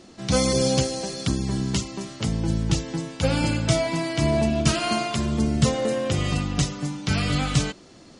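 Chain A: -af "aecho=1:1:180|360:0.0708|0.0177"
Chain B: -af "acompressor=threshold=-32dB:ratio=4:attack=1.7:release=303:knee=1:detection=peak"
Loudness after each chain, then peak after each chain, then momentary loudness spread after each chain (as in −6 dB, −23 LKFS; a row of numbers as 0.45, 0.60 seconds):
−24.0, −36.0 LKFS; −5.5, −20.5 dBFS; 7, 3 LU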